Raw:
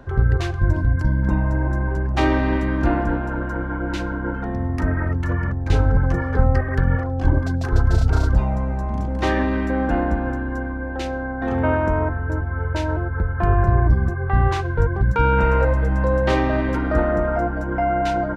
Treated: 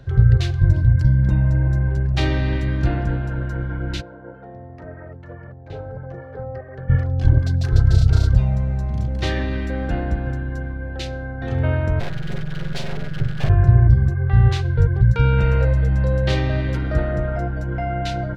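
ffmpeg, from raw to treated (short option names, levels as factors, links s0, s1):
-filter_complex "[0:a]asplit=3[s0][s1][s2];[s0]afade=t=out:st=4:d=0.02[s3];[s1]bandpass=f=630:t=q:w=1.7,afade=t=in:st=4:d=0.02,afade=t=out:st=6.88:d=0.02[s4];[s2]afade=t=in:st=6.88:d=0.02[s5];[s3][s4][s5]amix=inputs=3:normalize=0,asplit=3[s6][s7][s8];[s6]afade=t=out:st=11.99:d=0.02[s9];[s7]aeval=exprs='abs(val(0))':c=same,afade=t=in:st=11.99:d=0.02,afade=t=out:st=13.48:d=0.02[s10];[s8]afade=t=in:st=13.48:d=0.02[s11];[s9][s10][s11]amix=inputs=3:normalize=0,equalizer=f=125:t=o:w=1:g=11,equalizer=f=250:t=o:w=1:g=-8,equalizer=f=1000:t=o:w=1:g=-11,equalizer=f=4000:t=o:w=1:g=7,volume=0.891"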